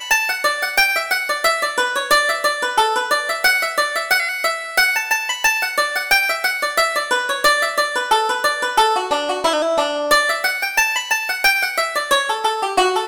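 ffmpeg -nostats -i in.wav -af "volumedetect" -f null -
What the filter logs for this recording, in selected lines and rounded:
mean_volume: -18.4 dB
max_volume: -7.5 dB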